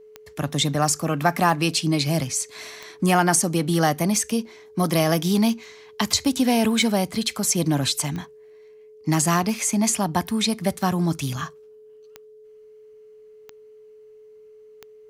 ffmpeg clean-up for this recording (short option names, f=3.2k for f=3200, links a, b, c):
-af "adeclick=t=4,bandreject=f=430:w=30"